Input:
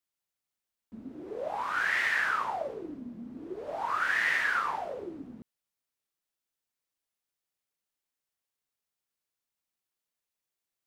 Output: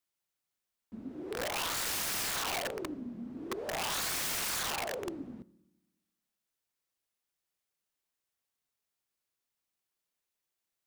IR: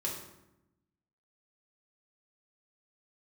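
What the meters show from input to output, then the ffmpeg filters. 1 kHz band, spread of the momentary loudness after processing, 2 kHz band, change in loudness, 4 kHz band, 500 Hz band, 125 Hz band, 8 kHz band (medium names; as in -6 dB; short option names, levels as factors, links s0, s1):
-7.0 dB, 14 LU, -11.0 dB, -4.0 dB, +7.0 dB, -1.5 dB, +5.0 dB, +16.0 dB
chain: -filter_complex "[0:a]asplit=2[s0][s1];[1:a]atrim=start_sample=2205[s2];[s1][s2]afir=irnorm=-1:irlink=0,volume=0.133[s3];[s0][s3]amix=inputs=2:normalize=0,aeval=exprs='(mod(29.9*val(0)+1,2)-1)/29.9':c=same"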